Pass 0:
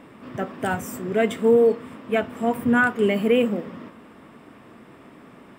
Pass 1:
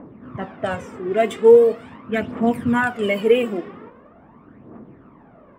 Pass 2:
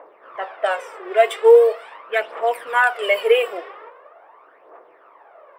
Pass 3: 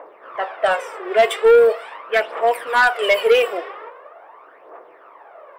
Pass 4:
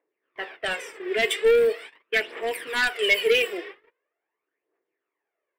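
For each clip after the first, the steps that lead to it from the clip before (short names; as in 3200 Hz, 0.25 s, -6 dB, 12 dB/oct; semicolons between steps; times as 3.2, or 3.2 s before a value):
low-pass opened by the level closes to 980 Hz, open at -17 dBFS; phaser 0.42 Hz, delay 2.9 ms, feedback 60%
inverse Chebyshev high-pass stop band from 250 Hz, stop band 40 dB; bell 6700 Hz -12 dB 0.23 oct; gain +5 dB
soft clip -12 dBFS, distortion -11 dB; gain +4.5 dB
gate -32 dBFS, range -29 dB; band shelf 850 Hz -15.5 dB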